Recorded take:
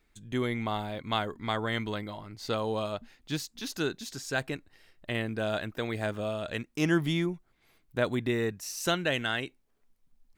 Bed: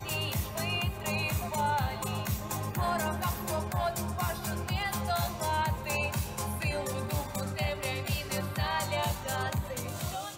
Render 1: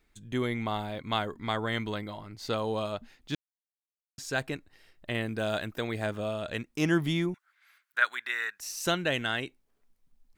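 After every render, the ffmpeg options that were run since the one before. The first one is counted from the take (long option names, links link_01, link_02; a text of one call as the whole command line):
ffmpeg -i in.wav -filter_complex "[0:a]asettb=1/sr,asplit=3[link_01][link_02][link_03];[link_01]atrim=end=5.224[link_04];[link_02]atrim=start=5.22:end=5.81,asetpts=PTS-STARTPTS,afade=type=in:duration=0.004:curve=qsin,afade=type=out:start_time=0.586:duration=0.004:curve=qsin,highshelf=frequency=5200:gain=5.5[link_05];[link_03]atrim=start=5.806[link_06];[link_04][link_05]acrossfade=duration=0.004:curve1=hsin:curve2=qsin[link_07];[link_07][link_06]acrossfade=duration=0.004:curve1=qsin:curve2=hsin,asettb=1/sr,asplit=3[link_08][link_09][link_10];[link_08]atrim=end=7.344[link_11];[link_09]atrim=start=7.34:end=8.6,asetpts=PTS-STARTPTS,afade=type=in:duration=0.004:curve=qsin,afade=type=out:start_time=1.256:duration=0.004:curve=qsin,highpass=frequency=1500:width_type=q:width=3.9[link_12];[link_10]atrim=start=8.596[link_13];[link_11][link_12]acrossfade=duration=0.004:curve1=hsin:curve2=qsin[link_14];[link_14][link_13]acrossfade=duration=0.004:curve1=qsin:curve2=hsin,asplit=3[link_15][link_16][link_17];[link_15]atrim=end=3.35,asetpts=PTS-STARTPTS,afade=type=out:start_time=3.346:duration=0.004:curve=hsin[link_18];[link_16]atrim=start=3.35:end=4.18,asetpts=PTS-STARTPTS,volume=0[link_19];[link_17]atrim=start=4.18,asetpts=PTS-STARTPTS,afade=type=in:duration=0.004:curve=hsin[link_20];[link_18][link_19][link_20]concat=n=3:v=0:a=1" out.wav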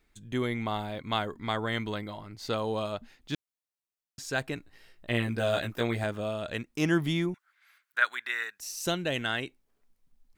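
ffmpeg -i in.wav -filter_complex "[0:a]asettb=1/sr,asplit=3[link_01][link_02][link_03];[link_01]atrim=end=4.554[link_04];[link_02]atrim=start=4.55:end=6.04,asetpts=PTS-STARTPTS,afade=type=in:duration=0.004:curve=qsin,afade=type=out:start_time=1.486:duration=0.004:curve=qsin,asplit=2[link_05][link_06];[link_06]adelay=17,volume=-2dB[link_07];[link_05][link_07]amix=inputs=2:normalize=0,atrim=end_sample=65709[link_08];[link_03]atrim=start=6.036[link_09];[link_04][link_08]acrossfade=duration=0.004:curve1=hsin:curve2=qsin[link_10];[link_10][link_09]acrossfade=duration=0.004:curve1=qsin:curve2=hsin,asettb=1/sr,asplit=3[link_11][link_12][link_13];[link_11]atrim=end=8.434[link_14];[link_12]atrim=start=8.43:end=9.16,asetpts=PTS-STARTPTS,afade=type=in:duration=0.004:curve=qsin,afade=type=out:start_time=0.726:duration=0.004:curve=qsin,equalizer=frequency=1500:width=0.87:gain=-6[link_15];[link_13]atrim=start=9.156[link_16];[link_14][link_15]acrossfade=duration=0.004:curve1=hsin:curve2=qsin[link_17];[link_17][link_16]acrossfade=duration=0.004:curve1=qsin:curve2=hsin" out.wav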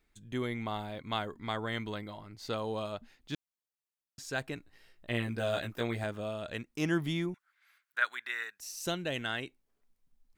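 ffmpeg -i in.wav -af "volume=-4.5dB" out.wav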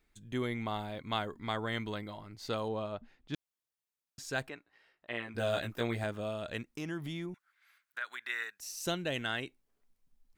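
ffmpeg -i in.wav -filter_complex "[0:a]asettb=1/sr,asplit=3[link_01][link_02][link_03];[link_01]atrim=end=2.684[link_04];[link_02]atrim=start=2.68:end=3.34,asetpts=PTS-STARTPTS,afade=type=in:duration=0.004:curve=qsin,afade=type=out:start_time=0.656:duration=0.004:curve=qsin,lowpass=frequency=1800:poles=1[link_05];[link_03]atrim=start=3.336[link_06];[link_04][link_05]acrossfade=duration=0.004:curve1=hsin:curve2=qsin[link_07];[link_07][link_06]acrossfade=duration=0.004:curve1=qsin:curve2=hsin,asplit=3[link_08][link_09][link_10];[link_08]afade=type=out:start_time=4.48:duration=0.02[link_11];[link_09]bandpass=frequency=1200:width_type=q:width=0.65,afade=type=in:start_time=4.48:duration=0.02,afade=type=out:start_time=5.34:duration=0.02[link_12];[link_10]afade=type=in:start_time=5.34:duration=0.02[link_13];[link_11][link_12][link_13]amix=inputs=3:normalize=0,asettb=1/sr,asplit=3[link_14][link_15][link_16];[link_14]atrim=end=6.764[link_17];[link_15]atrim=start=6.76:end=8.24,asetpts=PTS-STARTPTS,afade=type=in:duration=0.004:curve=qsin,afade=type=out:start_time=1.476:duration=0.004:curve=qsin,acompressor=threshold=-38dB:ratio=2.5:attack=3.2:release=140:knee=1:detection=peak[link_18];[link_16]atrim=start=8.236[link_19];[link_17][link_18]acrossfade=duration=0.004:curve1=hsin:curve2=qsin[link_20];[link_20][link_19]acrossfade=duration=0.004:curve1=qsin:curve2=hsin" out.wav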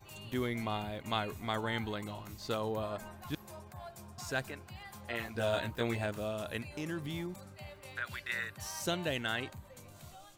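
ffmpeg -i in.wav -i bed.wav -filter_complex "[1:a]volume=-17dB[link_01];[0:a][link_01]amix=inputs=2:normalize=0" out.wav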